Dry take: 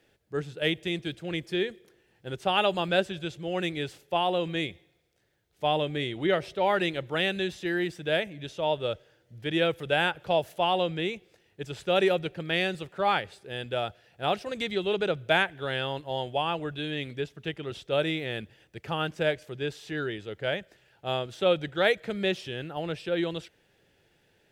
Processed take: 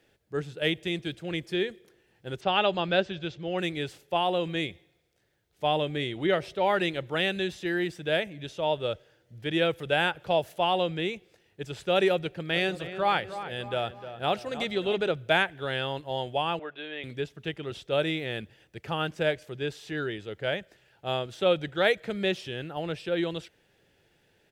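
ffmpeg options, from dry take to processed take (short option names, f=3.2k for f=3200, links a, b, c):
-filter_complex "[0:a]asplit=3[a][b][c];[a]afade=t=out:st=2.4:d=0.02[d];[b]lowpass=f=5.6k:w=0.5412,lowpass=f=5.6k:w=1.3066,afade=t=in:st=2.4:d=0.02,afade=t=out:st=3.57:d=0.02[e];[c]afade=t=in:st=3.57:d=0.02[f];[d][e][f]amix=inputs=3:normalize=0,asplit=3[g][h][i];[g]afade=t=out:st=12.53:d=0.02[j];[h]asplit=2[k][l];[l]adelay=304,lowpass=f=2k:p=1,volume=-11dB,asplit=2[m][n];[n]adelay=304,lowpass=f=2k:p=1,volume=0.52,asplit=2[o][p];[p]adelay=304,lowpass=f=2k:p=1,volume=0.52,asplit=2[q][r];[r]adelay=304,lowpass=f=2k:p=1,volume=0.52,asplit=2[s][t];[t]adelay=304,lowpass=f=2k:p=1,volume=0.52,asplit=2[u][v];[v]adelay=304,lowpass=f=2k:p=1,volume=0.52[w];[k][m][o][q][s][u][w]amix=inputs=7:normalize=0,afade=t=in:st=12.53:d=0.02,afade=t=out:st=15.11:d=0.02[x];[i]afade=t=in:st=15.11:d=0.02[y];[j][x][y]amix=inputs=3:normalize=0,asettb=1/sr,asplit=3[z][aa][ab];[z]atrim=end=16.594[ac];[aa]atrim=start=16.59:end=17.04,asetpts=PTS-STARTPTS,afade=t=in:d=0.004:c=qsin,afade=t=out:st=0.446:d=0.004:c=qsin,highpass=500,lowpass=2.6k[ad];[ab]atrim=start=17.036[ae];[ac][ad]acrossfade=d=0.004:c1=hsin:c2=qsin[af];[af][ae]acrossfade=d=0.004:c1=qsin:c2=hsin"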